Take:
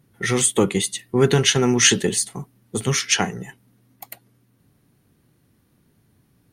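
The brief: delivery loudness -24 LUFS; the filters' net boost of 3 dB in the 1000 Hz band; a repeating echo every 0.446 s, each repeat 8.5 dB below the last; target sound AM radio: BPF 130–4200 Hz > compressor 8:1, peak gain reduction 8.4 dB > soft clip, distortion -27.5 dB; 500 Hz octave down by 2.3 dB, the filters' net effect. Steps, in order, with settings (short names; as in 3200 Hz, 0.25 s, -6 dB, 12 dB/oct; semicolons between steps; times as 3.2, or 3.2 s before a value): BPF 130–4200 Hz; bell 500 Hz -4 dB; bell 1000 Hz +5.5 dB; feedback echo 0.446 s, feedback 38%, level -8.5 dB; compressor 8:1, threshold -20 dBFS; soft clip -9 dBFS; gain +2.5 dB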